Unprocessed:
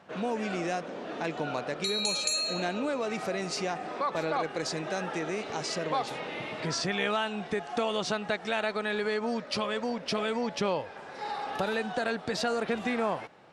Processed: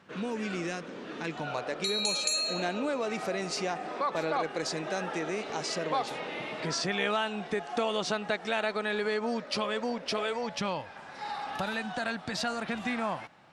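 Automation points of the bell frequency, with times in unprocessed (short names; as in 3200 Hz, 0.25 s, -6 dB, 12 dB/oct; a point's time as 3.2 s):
bell -10.5 dB 0.73 oct
1.28 s 690 Hz
1.82 s 95 Hz
9.87 s 95 Hz
10.67 s 440 Hz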